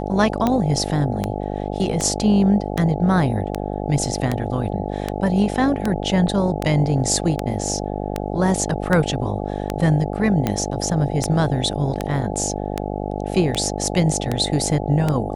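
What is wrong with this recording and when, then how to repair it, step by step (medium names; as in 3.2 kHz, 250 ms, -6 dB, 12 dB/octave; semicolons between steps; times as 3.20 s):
buzz 50 Hz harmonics 17 -26 dBFS
tick 78 rpm -7 dBFS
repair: de-click; de-hum 50 Hz, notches 17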